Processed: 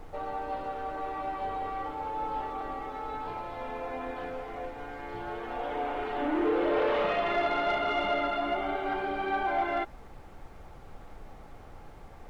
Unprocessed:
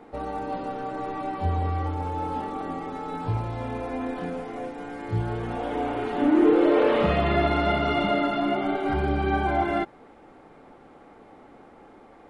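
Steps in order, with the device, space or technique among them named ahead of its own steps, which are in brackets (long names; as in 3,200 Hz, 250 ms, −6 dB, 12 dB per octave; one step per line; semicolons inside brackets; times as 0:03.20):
aircraft cabin announcement (band-pass filter 470–3,900 Hz; soft clipping −18 dBFS, distortion −19 dB; brown noise bed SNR 14 dB)
level −1.5 dB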